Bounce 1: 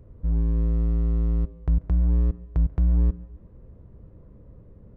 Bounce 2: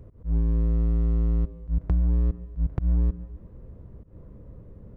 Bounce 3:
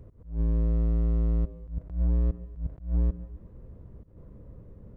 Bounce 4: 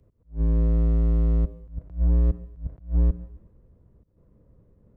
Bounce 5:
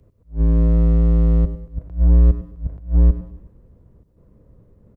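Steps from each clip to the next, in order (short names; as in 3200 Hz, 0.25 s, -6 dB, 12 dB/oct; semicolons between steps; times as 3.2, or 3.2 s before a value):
auto swell 0.134 s; compressor, threshold -22 dBFS, peak gain reduction 5.5 dB; gain +3 dB
dynamic EQ 590 Hz, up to +7 dB, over -57 dBFS, Q 3.3; attack slew limiter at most 150 dB/s; gain -2 dB
three-band expander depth 70%; gain +4 dB
feedback echo 0.101 s, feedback 36%, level -15 dB; gain +6.5 dB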